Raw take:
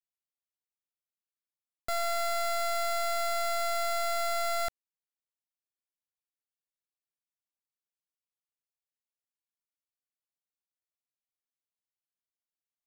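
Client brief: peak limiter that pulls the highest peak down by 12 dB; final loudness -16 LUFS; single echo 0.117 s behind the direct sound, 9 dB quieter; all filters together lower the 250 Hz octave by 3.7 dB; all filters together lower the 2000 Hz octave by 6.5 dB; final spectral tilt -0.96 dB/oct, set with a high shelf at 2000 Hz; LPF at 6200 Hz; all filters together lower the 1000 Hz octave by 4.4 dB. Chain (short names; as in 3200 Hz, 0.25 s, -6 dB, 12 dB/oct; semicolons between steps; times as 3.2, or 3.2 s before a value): LPF 6200 Hz; bell 250 Hz -5.5 dB; bell 1000 Hz -4.5 dB; high shelf 2000 Hz -3.5 dB; bell 2000 Hz -4 dB; limiter -41.5 dBFS; echo 0.117 s -9 dB; gain +30 dB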